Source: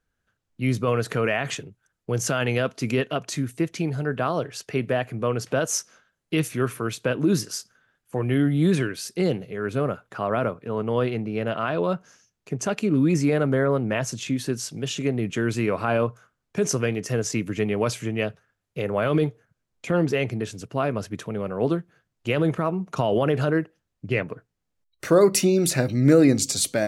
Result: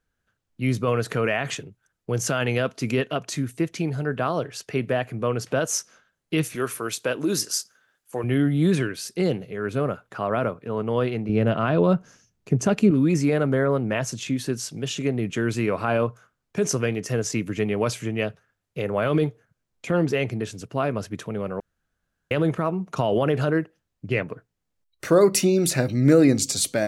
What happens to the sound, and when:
6.55–8.24 tone controls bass -10 dB, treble +7 dB
11.29–12.91 low shelf 360 Hz +10.5 dB
21.6–22.31 room tone

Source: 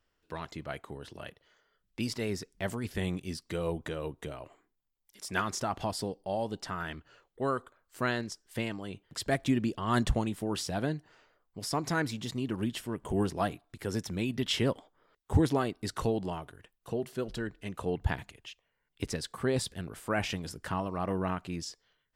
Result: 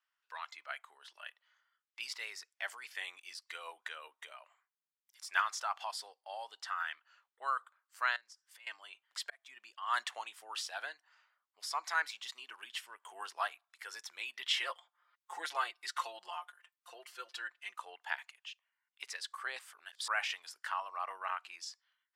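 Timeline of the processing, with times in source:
8.16–8.67 compressor 4:1, threshold -48 dBFS
9.3–10.09 fade in
14.56–17.75 comb 5.7 ms, depth 79%
19.59–20.08 reverse
whole clip: HPF 1000 Hz 24 dB/oct; spectral noise reduction 6 dB; high shelf 5000 Hz -11.5 dB; gain +2.5 dB

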